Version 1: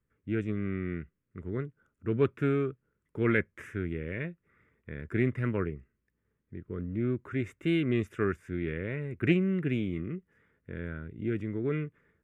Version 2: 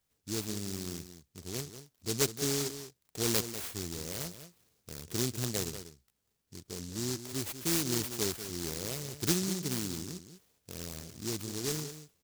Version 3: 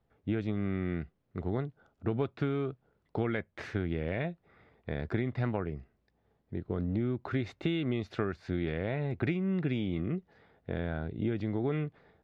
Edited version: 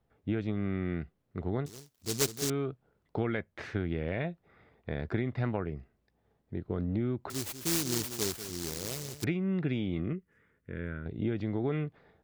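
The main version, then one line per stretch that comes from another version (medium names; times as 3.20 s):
3
1.66–2.50 s: from 2
7.30–9.24 s: from 2
10.13–11.06 s: from 1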